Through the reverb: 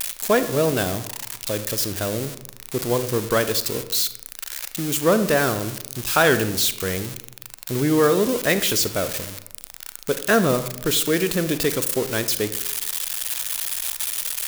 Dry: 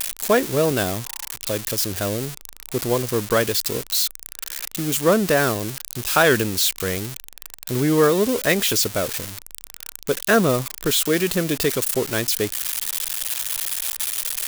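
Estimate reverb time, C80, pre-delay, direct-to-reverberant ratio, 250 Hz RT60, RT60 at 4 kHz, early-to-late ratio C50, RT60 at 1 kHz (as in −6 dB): 0.85 s, 15.0 dB, 34 ms, 11.0 dB, 1.0 s, 0.45 s, 12.0 dB, 0.80 s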